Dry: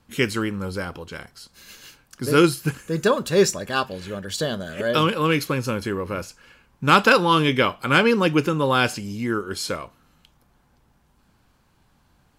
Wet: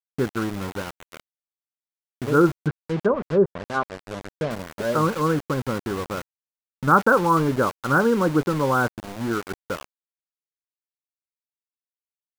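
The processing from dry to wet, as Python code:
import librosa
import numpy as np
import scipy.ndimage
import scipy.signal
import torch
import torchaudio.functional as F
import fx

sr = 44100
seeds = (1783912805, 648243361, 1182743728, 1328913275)

y = scipy.signal.sosfilt(scipy.signal.cheby1(5, 1.0, 1500.0, 'lowpass', fs=sr, output='sos'), x)
y = np.where(np.abs(y) >= 10.0 ** (-28.5 / 20.0), y, 0.0)
y = fx.env_lowpass_down(y, sr, base_hz=820.0, full_db=-14.5, at=(2.53, 4.51))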